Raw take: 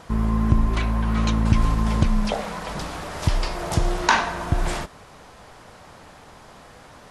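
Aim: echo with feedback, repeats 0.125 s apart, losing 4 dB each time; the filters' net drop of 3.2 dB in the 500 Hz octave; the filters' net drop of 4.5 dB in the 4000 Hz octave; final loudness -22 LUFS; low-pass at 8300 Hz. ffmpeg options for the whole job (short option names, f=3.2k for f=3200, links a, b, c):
-af "lowpass=8.3k,equalizer=f=500:t=o:g=-4.5,equalizer=f=4k:t=o:g=-5.5,aecho=1:1:125|250|375|500|625|750|875|1000|1125:0.631|0.398|0.25|0.158|0.0994|0.0626|0.0394|0.0249|0.0157"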